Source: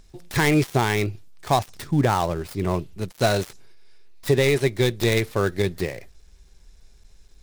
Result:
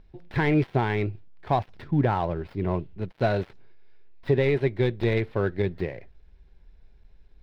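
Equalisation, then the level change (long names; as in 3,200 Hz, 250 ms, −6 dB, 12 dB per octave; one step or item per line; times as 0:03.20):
high-frequency loss of the air 390 metres
notch filter 1,200 Hz, Q 9.5
−2.0 dB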